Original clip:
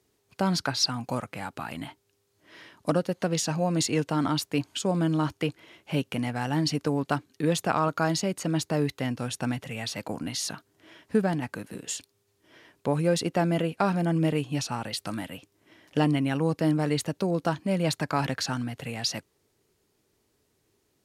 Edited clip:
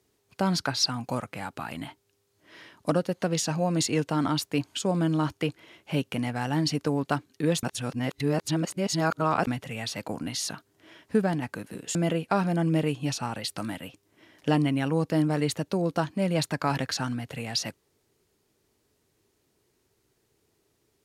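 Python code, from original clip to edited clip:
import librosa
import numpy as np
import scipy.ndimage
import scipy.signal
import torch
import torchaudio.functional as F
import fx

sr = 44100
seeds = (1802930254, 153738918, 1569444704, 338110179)

y = fx.edit(x, sr, fx.reverse_span(start_s=7.63, length_s=1.84),
    fx.cut(start_s=11.95, length_s=1.49), tone=tone)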